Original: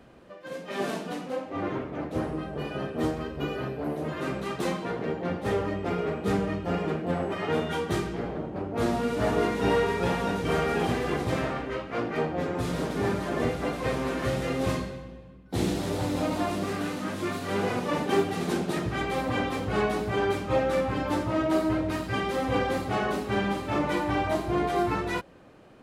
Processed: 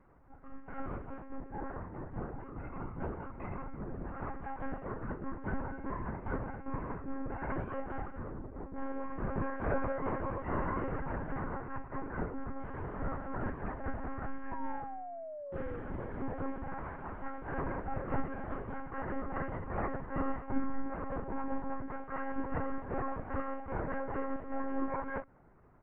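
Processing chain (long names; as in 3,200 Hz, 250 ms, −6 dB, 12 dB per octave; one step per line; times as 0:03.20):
parametric band 250 Hz −6.5 dB 0.89 octaves
single-sideband voice off tune −360 Hz 330–2,100 Hz
double-tracking delay 24 ms −7.5 dB
one-pitch LPC vocoder at 8 kHz 270 Hz
sound drawn into the spectrogram fall, 0:14.51–0:15.80, 470–990 Hz −38 dBFS
level −5.5 dB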